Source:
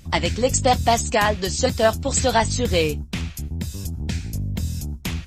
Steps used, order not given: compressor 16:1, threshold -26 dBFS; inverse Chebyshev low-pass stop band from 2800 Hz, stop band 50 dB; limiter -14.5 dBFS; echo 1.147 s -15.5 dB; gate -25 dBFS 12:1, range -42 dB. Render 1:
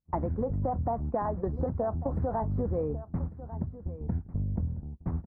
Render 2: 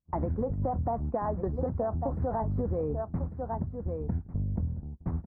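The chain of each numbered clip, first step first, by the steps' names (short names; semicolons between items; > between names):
gate > inverse Chebyshev low-pass > limiter > compressor > echo; gate > echo > limiter > inverse Chebyshev low-pass > compressor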